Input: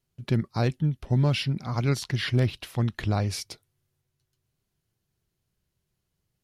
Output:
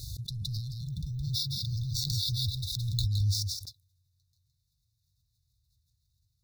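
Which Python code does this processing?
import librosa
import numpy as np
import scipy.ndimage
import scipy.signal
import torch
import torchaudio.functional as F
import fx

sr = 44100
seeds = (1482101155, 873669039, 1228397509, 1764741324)

y = scipy.ndimage.median_filter(x, 5, mode='constant')
y = scipy.signal.sosfilt(scipy.signal.butter(2, 63.0, 'highpass', fs=sr, output='sos'), y)
y = fx.peak_eq(y, sr, hz=1200.0, db=12.5, octaves=0.24)
y = fx.over_compress(y, sr, threshold_db=-29.0, ratio=-1.0)
y = fx.brickwall_bandstop(y, sr, low_hz=190.0, high_hz=3500.0)
y = fx.low_shelf(y, sr, hz=160.0, db=4.5)
y = fx.fixed_phaser(y, sr, hz=400.0, stages=4)
y = fx.resample_bad(y, sr, factor=2, down='filtered', up='hold', at=(0.76, 3.05))
y = y + 10.0 ** (-5.5 / 20.0) * np.pad(y, (int(166 * sr / 1000.0), 0))[:len(y)]
y = fx.pre_swell(y, sr, db_per_s=22.0)
y = F.gain(torch.from_numpy(y), 2.0).numpy()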